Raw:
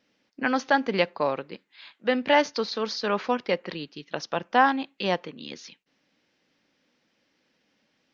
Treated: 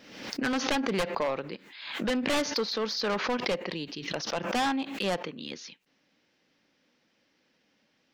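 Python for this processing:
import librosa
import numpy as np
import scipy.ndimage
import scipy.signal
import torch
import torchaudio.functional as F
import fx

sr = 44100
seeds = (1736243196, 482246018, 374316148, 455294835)

y = np.minimum(x, 2.0 * 10.0 ** (-22.0 / 20.0) - x)
y = fx.peak_eq(y, sr, hz=1400.0, db=-8.0, octaves=0.36, at=(3.38, 3.96))
y = 10.0 ** (-21.5 / 20.0) * np.tanh(y / 10.0 ** (-21.5 / 20.0))
y = fx.pre_swell(y, sr, db_per_s=63.0)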